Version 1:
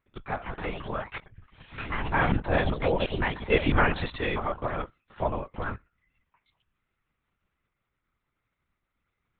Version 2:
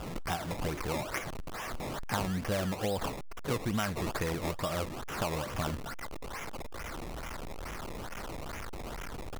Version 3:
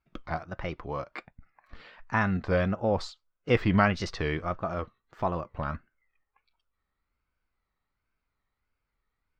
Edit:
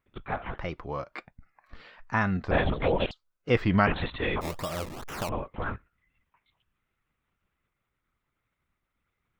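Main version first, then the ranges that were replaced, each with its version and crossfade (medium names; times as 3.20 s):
1
0.58–2.51 s: from 3
3.11–3.87 s: from 3
4.41–5.29 s: from 2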